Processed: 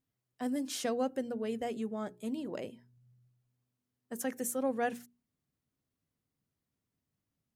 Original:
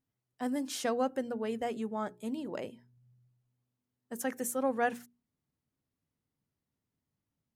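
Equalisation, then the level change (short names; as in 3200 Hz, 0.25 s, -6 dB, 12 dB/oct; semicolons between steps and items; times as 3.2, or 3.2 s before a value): notch 880 Hz, Q 15; dynamic EQ 1200 Hz, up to -6 dB, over -46 dBFS, Q 0.95; 0.0 dB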